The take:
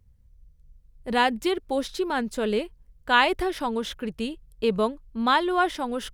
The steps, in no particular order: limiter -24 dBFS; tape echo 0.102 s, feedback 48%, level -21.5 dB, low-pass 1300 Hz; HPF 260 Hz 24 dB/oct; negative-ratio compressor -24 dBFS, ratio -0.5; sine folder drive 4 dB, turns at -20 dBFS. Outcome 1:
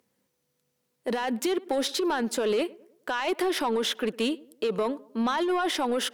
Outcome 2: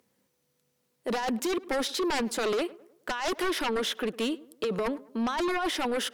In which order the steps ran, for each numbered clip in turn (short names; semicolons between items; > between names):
HPF > limiter > tape echo > sine folder > negative-ratio compressor; negative-ratio compressor > HPF > sine folder > tape echo > limiter